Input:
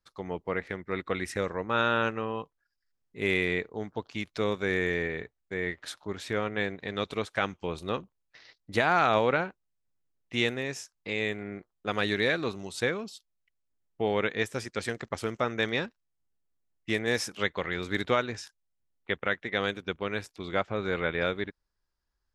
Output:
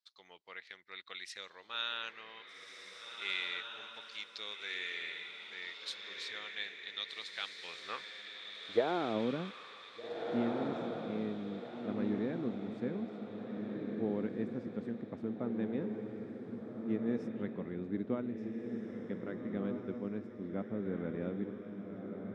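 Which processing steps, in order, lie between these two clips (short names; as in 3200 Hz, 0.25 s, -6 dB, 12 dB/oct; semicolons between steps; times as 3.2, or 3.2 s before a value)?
band-pass sweep 4000 Hz -> 230 Hz, 7.41–9.26; on a send: diffused feedback echo 1.64 s, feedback 41%, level -3.5 dB; on the sum: gain +1 dB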